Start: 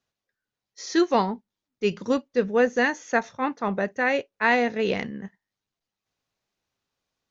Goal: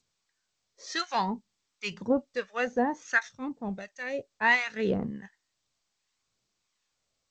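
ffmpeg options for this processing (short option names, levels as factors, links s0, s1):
-filter_complex "[0:a]acrossover=split=1000[s0][s1];[s0]aeval=exprs='val(0)*(1-1/2+1/2*cos(2*PI*1.4*n/s))':c=same[s2];[s1]aeval=exprs='val(0)*(1-1/2-1/2*cos(2*PI*1.4*n/s))':c=same[s3];[s2][s3]amix=inputs=2:normalize=0,asplit=3[s4][s5][s6];[s4]afade=t=out:st=3.27:d=0.02[s7];[s5]equalizer=f=1200:t=o:w=2.4:g=-13.5,afade=t=in:st=3.27:d=0.02,afade=t=out:st=4.31:d=0.02[s8];[s6]afade=t=in:st=4.31:d=0.02[s9];[s7][s8][s9]amix=inputs=3:normalize=0,flanger=delay=0.5:depth=1.3:regen=36:speed=0.62:shape=triangular,volume=1.78" -ar 16000 -c:a g722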